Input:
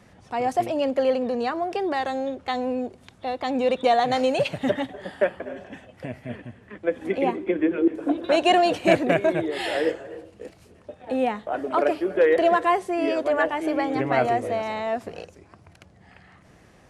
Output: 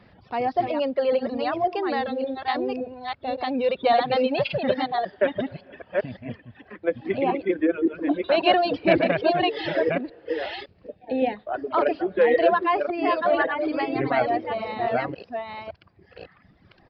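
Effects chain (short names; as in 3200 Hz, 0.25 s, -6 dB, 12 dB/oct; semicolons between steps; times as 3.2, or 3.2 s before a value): reverse delay 0.561 s, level -3 dB; reverb removal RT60 1.6 s; 10.96–11.37 Butterworth band-stop 1200 Hz, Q 1.3; downsampling 11025 Hz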